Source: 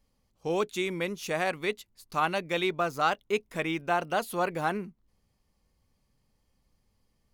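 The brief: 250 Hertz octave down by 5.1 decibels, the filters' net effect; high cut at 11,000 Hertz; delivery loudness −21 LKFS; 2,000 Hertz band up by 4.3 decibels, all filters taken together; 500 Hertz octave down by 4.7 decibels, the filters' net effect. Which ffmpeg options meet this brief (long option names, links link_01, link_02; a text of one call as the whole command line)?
ffmpeg -i in.wav -af "lowpass=11000,equalizer=frequency=250:width_type=o:gain=-6.5,equalizer=frequency=500:width_type=o:gain=-4.5,equalizer=frequency=2000:width_type=o:gain=6,volume=8.5dB" out.wav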